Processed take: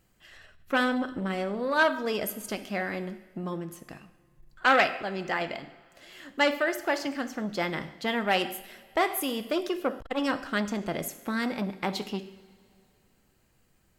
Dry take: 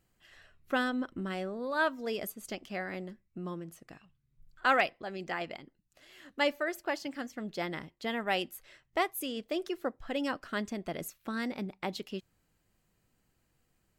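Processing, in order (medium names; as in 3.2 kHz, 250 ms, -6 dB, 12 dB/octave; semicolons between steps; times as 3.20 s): two-slope reverb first 0.72 s, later 2.8 s, from -18 dB, DRR 9 dB; transformer saturation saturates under 1.5 kHz; trim +6.5 dB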